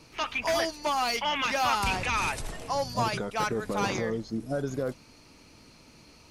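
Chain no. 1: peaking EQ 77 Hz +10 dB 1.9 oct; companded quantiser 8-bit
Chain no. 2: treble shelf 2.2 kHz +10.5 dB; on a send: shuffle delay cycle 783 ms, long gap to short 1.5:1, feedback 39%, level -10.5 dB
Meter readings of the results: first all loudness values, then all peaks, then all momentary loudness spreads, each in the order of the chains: -28.0 LUFS, -24.0 LUFS; -13.5 dBFS, -10.0 dBFS; 6 LU, 19 LU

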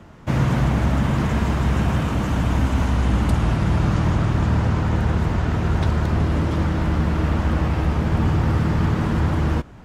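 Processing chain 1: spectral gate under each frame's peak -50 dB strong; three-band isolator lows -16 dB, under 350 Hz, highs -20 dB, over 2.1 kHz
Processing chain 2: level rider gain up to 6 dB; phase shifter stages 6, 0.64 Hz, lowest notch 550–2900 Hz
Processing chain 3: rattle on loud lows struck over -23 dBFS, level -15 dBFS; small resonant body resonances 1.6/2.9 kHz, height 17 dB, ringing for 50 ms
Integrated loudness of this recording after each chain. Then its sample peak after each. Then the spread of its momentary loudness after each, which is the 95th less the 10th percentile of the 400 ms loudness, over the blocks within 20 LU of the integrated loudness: -30.0 LUFS, -15.5 LUFS, -19.0 LUFS; -16.0 dBFS, -2.0 dBFS, -4.5 dBFS; 1 LU, 2 LU, 1 LU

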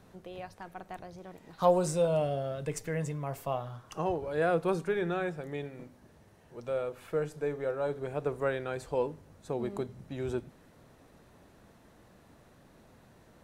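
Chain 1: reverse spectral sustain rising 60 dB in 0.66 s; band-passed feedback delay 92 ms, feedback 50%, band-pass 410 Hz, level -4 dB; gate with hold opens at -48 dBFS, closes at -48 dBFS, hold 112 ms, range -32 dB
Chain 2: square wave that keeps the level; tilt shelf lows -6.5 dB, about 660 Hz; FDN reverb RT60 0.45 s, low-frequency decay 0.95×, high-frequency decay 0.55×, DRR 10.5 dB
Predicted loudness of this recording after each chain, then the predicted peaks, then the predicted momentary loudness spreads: -30.5 LUFS, -27.0 LUFS; -11.5 dBFS, -2.0 dBFS; 16 LU, 17 LU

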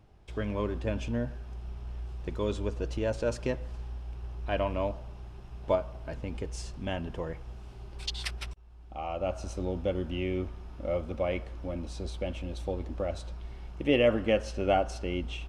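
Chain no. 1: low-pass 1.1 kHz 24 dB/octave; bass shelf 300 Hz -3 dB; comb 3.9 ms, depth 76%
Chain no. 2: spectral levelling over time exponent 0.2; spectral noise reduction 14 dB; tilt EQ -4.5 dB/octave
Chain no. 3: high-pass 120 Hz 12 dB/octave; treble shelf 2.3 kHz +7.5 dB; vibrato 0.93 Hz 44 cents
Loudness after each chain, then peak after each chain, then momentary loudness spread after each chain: -32.5 LUFS, -24.0 LUFS, -32.5 LUFS; -12.0 dBFS, -6.0 dBFS, -10.0 dBFS; 17 LU, 10 LU, 23 LU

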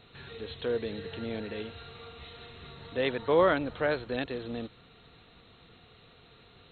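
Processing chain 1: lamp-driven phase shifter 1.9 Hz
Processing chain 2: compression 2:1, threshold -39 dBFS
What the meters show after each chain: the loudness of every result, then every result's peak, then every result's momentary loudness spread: -34.0 LUFS, -40.0 LUFS; -14.0 dBFS, -23.0 dBFS; 23 LU, 20 LU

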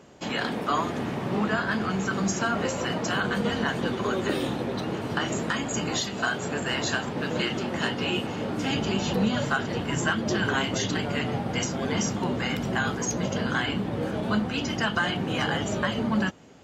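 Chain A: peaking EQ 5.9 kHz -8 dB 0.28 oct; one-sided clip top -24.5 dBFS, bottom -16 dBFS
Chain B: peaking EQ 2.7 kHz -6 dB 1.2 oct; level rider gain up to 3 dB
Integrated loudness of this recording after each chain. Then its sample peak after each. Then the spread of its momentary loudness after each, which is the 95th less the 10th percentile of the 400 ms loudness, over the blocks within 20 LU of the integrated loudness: -28.0 LUFS, -25.5 LUFS; -16.0 dBFS, -10.0 dBFS; 3 LU, 3 LU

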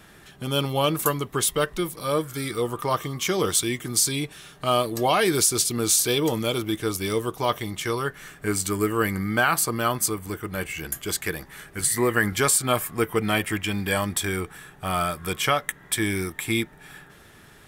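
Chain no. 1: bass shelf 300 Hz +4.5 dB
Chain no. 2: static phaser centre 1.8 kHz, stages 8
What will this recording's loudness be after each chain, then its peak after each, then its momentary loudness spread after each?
-23.5 LUFS, -29.5 LUFS; -7.0 dBFS, -10.5 dBFS; 10 LU, 9 LU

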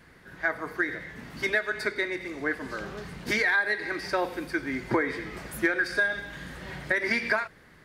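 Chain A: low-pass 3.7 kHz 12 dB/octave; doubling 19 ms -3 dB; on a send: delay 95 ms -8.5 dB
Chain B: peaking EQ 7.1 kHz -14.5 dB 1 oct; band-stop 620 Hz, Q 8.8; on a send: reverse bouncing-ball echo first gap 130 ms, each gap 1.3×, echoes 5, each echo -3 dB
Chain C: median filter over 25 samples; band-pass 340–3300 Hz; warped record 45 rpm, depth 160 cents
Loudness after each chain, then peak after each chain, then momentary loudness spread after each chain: -26.5 LUFS, -27.0 LUFS, -36.5 LUFS; -10.5 dBFS, -11.5 dBFS, -14.5 dBFS; 12 LU, 8 LU, 13 LU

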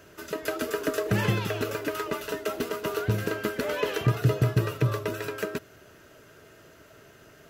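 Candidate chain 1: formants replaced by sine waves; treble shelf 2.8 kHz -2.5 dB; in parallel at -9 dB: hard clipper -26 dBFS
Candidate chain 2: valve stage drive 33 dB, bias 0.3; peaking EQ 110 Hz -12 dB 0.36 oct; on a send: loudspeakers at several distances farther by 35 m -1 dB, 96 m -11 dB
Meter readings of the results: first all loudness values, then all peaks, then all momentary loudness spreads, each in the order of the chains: -26.5 LUFS, -35.0 LUFS; -10.0 dBFS, -24.5 dBFS; 5 LU, 17 LU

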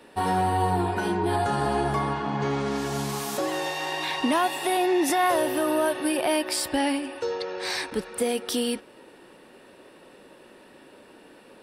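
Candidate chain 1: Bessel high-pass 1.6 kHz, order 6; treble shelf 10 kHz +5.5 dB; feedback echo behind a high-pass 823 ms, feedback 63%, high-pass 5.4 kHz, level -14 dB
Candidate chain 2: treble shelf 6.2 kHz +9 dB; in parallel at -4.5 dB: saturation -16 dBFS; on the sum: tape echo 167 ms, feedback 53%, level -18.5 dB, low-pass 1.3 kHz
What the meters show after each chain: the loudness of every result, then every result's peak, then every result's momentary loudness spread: -32.0 LUFS, -21.0 LUFS; -11.5 dBFS, -5.0 dBFS; 20 LU, 6 LU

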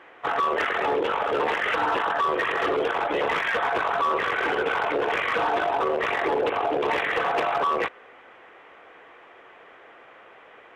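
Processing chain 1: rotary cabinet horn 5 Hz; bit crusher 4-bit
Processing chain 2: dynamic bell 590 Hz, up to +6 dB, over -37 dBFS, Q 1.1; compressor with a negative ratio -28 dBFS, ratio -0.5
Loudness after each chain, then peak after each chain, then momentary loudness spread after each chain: -26.0 LUFS, -31.0 LUFS; -17.0 dBFS, -11.5 dBFS; 2 LU, 12 LU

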